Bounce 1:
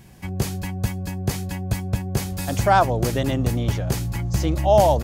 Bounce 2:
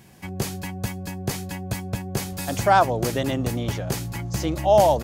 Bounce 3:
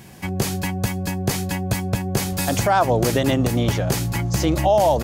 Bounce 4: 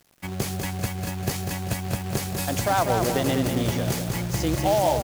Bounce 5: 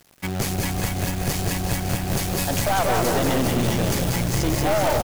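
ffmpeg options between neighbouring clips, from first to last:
ffmpeg -i in.wav -af "highpass=frequency=170:poles=1" out.wav
ffmpeg -i in.wav -af "alimiter=limit=-16dB:level=0:latency=1:release=117,volume=7.5dB" out.wav
ffmpeg -i in.wav -af "acrusher=bits=3:mode=log:mix=0:aa=0.000001,aeval=exprs='sgn(val(0))*max(abs(val(0))-0.0112,0)':channel_layout=same,aecho=1:1:196|392|588|784|980|1176:0.501|0.231|0.106|0.0488|0.0224|0.0103,volume=-5dB" out.wav
ffmpeg -i in.wav -filter_complex "[0:a]asplit=7[link_01][link_02][link_03][link_04][link_05][link_06][link_07];[link_02]adelay=183,afreqshift=-34,volume=-7dB[link_08];[link_03]adelay=366,afreqshift=-68,volume=-12.8dB[link_09];[link_04]adelay=549,afreqshift=-102,volume=-18.7dB[link_10];[link_05]adelay=732,afreqshift=-136,volume=-24.5dB[link_11];[link_06]adelay=915,afreqshift=-170,volume=-30.4dB[link_12];[link_07]adelay=1098,afreqshift=-204,volume=-36.2dB[link_13];[link_01][link_08][link_09][link_10][link_11][link_12][link_13]amix=inputs=7:normalize=0,aeval=exprs='(tanh(15.8*val(0)+0.45)-tanh(0.45))/15.8':channel_layout=same,acrusher=bits=3:mode=log:mix=0:aa=0.000001,volume=6.5dB" out.wav

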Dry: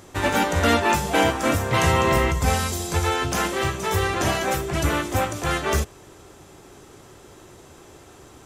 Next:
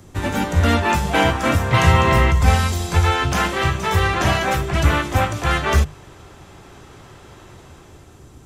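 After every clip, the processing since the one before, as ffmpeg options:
ffmpeg -i in.wav -filter_complex "[0:a]bass=frequency=250:gain=13,treble=frequency=4000:gain=1,bandreject=frequency=50:width_type=h:width=6,bandreject=frequency=100:width_type=h:width=6,bandreject=frequency=150:width_type=h:width=6,acrossover=split=200|590|4400[link_01][link_02][link_03][link_04];[link_03]dynaudnorm=framelen=180:gausssize=9:maxgain=10dB[link_05];[link_01][link_02][link_05][link_04]amix=inputs=4:normalize=0,volume=-4dB" out.wav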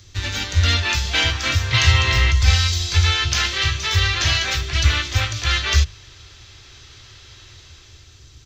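ffmpeg -i in.wav -af "firequalizer=gain_entry='entry(110,0);entry(160,-17);entry(340,-11);entry(810,-14);entry(1200,-7);entry(1800,0);entry(4200,12);entry(6600,6);entry(9400,-19);entry(15000,-3)':delay=0.05:min_phase=1" out.wav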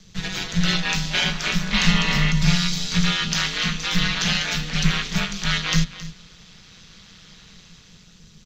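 ffmpeg -i in.wav -af "aeval=exprs='val(0)*sin(2*PI*90*n/s)':channel_layout=same,aecho=1:1:269:0.168" out.wav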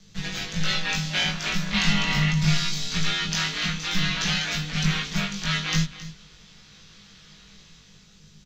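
ffmpeg -i in.wav -filter_complex "[0:a]asplit=2[link_01][link_02];[link_02]adelay=20,volume=-2.5dB[link_03];[link_01][link_03]amix=inputs=2:normalize=0,volume=-5dB" out.wav

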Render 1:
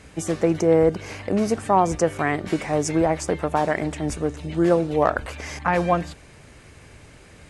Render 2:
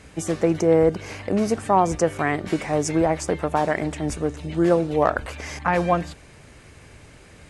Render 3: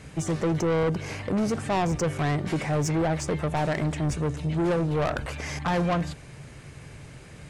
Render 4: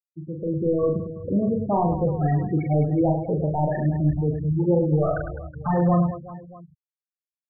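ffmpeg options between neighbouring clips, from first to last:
ffmpeg -i in.wav -af anull out.wav
ffmpeg -i in.wav -filter_complex "[0:a]acrossover=split=8000[link_01][link_02];[link_02]acompressor=threshold=-48dB:ratio=4:attack=1:release=60[link_03];[link_01][link_03]amix=inputs=2:normalize=0,equalizer=frequency=140:width_type=o:width=0.54:gain=10.5,asoftclip=type=tanh:threshold=-21dB" out.wav
ffmpeg -i in.wav -af "afftfilt=real='re*gte(hypot(re,im),0.158)':imag='im*gte(hypot(re,im),0.158)':win_size=1024:overlap=0.75,dynaudnorm=framelen=150:gausssize=7:maxgain=11dB,aecho=1:1:40|104|206.4|370.2|632.4:0.631|0.398|0.251|0.158|0.1,volume=-8.5dB" out.wav

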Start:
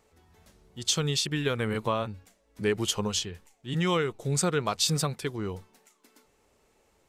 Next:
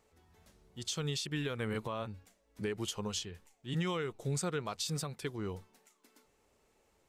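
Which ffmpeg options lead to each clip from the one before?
ffmpeg -i in.wav -af "alimiter=limit=-21dB:level=0:latency=1:release=244,volume=-5dB" out.wav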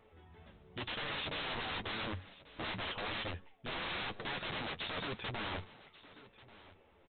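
ffmpeg -i in.wav -af "aresample=8000,aeval=exprs='(mod(112*val(0)+1,2)-1)/112':channel_layout=same,aresample=44100,flanger=delay=8.7:depth=4:regen=-30:speed=0.95:shape=triangular,aecho=1:1:1139:0.112,volume=10dB" out.wav

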